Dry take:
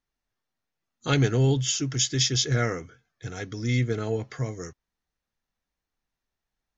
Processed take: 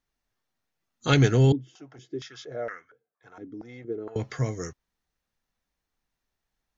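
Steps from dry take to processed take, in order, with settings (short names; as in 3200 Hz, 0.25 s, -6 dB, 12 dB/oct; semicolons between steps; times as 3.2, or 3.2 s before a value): 1.52–4.16 stepped band-pass 4.3 Hz 290–1600 Hz; gain +2.5 dB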